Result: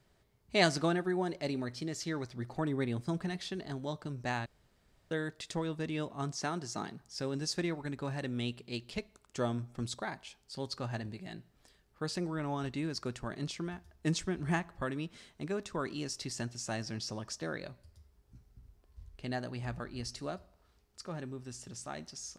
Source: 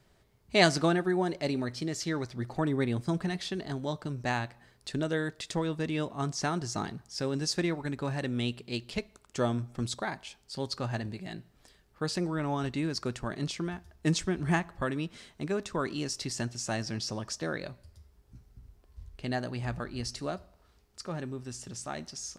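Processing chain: 4.46–5.11 room tone; 6.38–7.02 HPF 150 Hz; gain -4.5 dB

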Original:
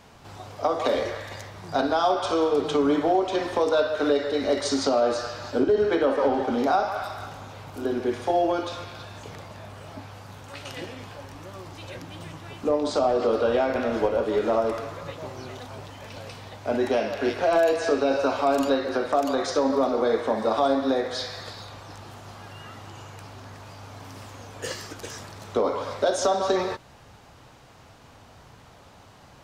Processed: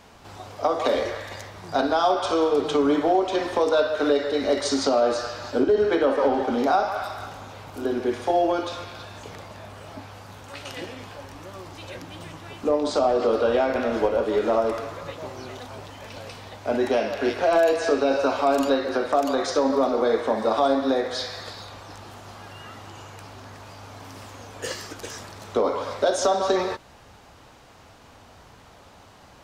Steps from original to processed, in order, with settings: bell 130 Hz -5.5 dB 0.76 oct; gain +1.5 dB

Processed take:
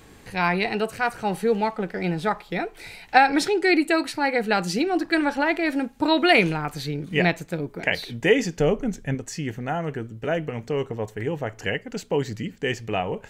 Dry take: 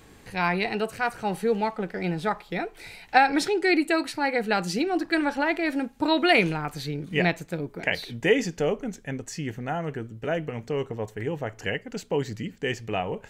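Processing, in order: 8.6–9.15 low shelf 180 Hz +10 dB; gain +2.5 dB

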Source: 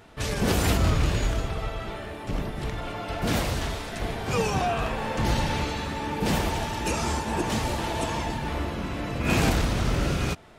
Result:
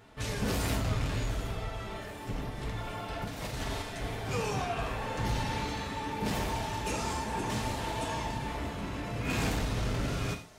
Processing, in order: thin delay 0.769 s, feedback 74%, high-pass 5300 Hz, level -16.5 dB; soft clip -20 dBFS, distortion -15 dB; 3.24–3.82 negative-ratio compressor -30 dBFS, ratio -0.5; non-linear reverb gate 0.15 s falling, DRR 2.5 dB; gain -6.5 dB

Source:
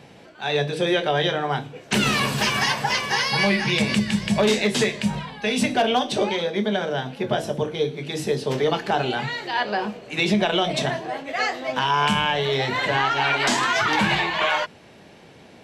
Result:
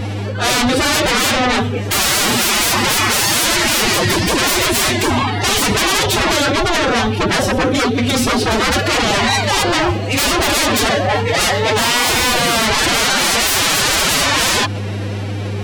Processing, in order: hum 60 Hz, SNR 17 dB; sine folder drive 17 dB, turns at -8.5 dBFS; formant-preserving pitch shift +9 st; gain -2.5 dB

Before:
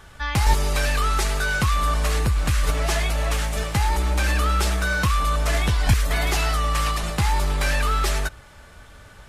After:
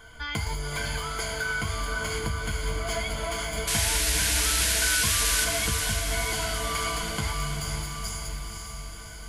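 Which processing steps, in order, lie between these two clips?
notches 50/100 Hz; spectral delete 7.33–8.95, 230–4600 Hz; ripple EQ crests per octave 1.8, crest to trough 16 dB; compressor 4:1, threshold -23 dBFS, peak gain reduction 10.5 dB; resonator 90 Hz, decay 0.52 s, harmonics odd, mix 70%; painted sound noise, 3.67–5.45, 1400–12000 Hz -31 dBFS; diffused feedback echo 0.507 s, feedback 61%, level -5 dB; gain +4 dB

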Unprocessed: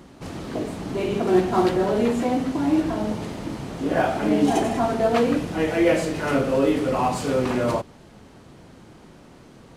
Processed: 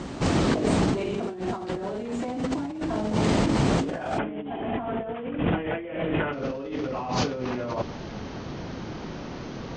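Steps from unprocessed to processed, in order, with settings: steep low-pass 8800 Hz 96 dB/oct, from 4.17 s 3400 Hz, from 6.32 s 6400 Hz; negative-ratio compressor -32 dBFS, ratio -1; gain +3.5 dB

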